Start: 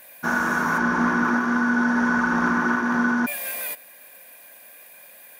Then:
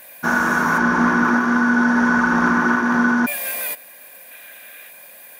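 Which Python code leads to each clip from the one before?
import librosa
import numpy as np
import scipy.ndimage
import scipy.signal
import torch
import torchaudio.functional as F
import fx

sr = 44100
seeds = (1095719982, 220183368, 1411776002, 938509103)

y = fx.spec_box(x, sr, start_s=4.31, length_s=0.59, low_hz=1200.0, high_hz=4100.0, gain_db=6)
y = y * librosa.db_to_amplitude(4.5)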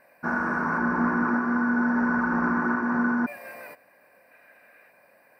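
y = np.convolve(x, np.full(13, 1.0 / 13))[:len(x)]
y = y * librosa.db_to_amplitude(-6.5)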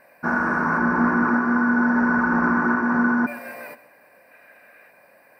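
y = fx.echo_feedback(x, sr, ms=128, feedback_pct=44, wet_db=-17.5)
y = y * librosa.db_to_amplitude(4.5)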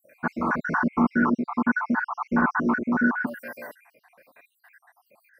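y = fx.spec_dropout(x, sr, seeds[0], share_pct=65)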